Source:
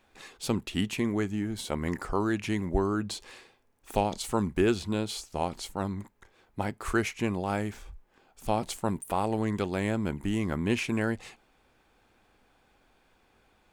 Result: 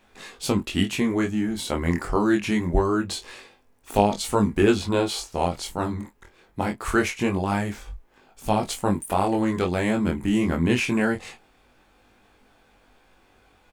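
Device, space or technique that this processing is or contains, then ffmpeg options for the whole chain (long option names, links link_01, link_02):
double-tracked vocal: -filter_complex "[0:a]asettb=1/sr,asplit=3[link_01][link_02][link_03];[link_01]atrim=end=4.814[link_04];[link_02]atrim=start=4.81:end=5.32,asetpts=PTS-STARTPTS,afade=type=in:duration=0.004:curve=qsin,afade=type=out:start_time=0.506:duration=0.004:curve=qsin,equalizer=frequency=860:width=0.79:gain=7[link_05];[link_03]atrim=start=5.316[link_06];[link_04][link_05]acrossfade=duration=0.004:curve1=hsin:curve2=qsin[link_07];[link_07][link_06]acrossfade=duration=0.004:curve1=qsin:curve2=hsin,asplit=2[link_08][link_09];[link_09]adelay=24,volume=-11.5dB[link_10];[link_08][link_10]amix=inputs=2:normalize=0,flanger=delay=19.5:depth=4.1:speed=0.24,volume=9dB"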